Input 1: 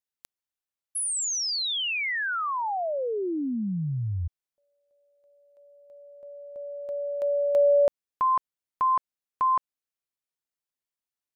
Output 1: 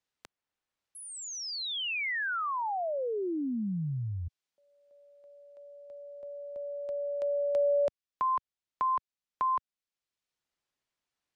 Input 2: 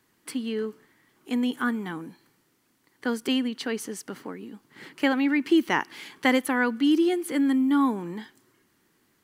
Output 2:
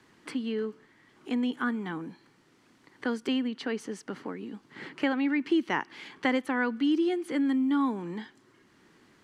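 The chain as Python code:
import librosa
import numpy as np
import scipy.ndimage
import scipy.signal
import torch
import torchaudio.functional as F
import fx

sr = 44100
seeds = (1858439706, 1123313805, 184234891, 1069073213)

y = fx.air_absorb(x, sr, metres=79.0)
y = fx.band_squash(y, sr, depth_pct=40)
y = y * librosa.db_to_amplitude(-3.5)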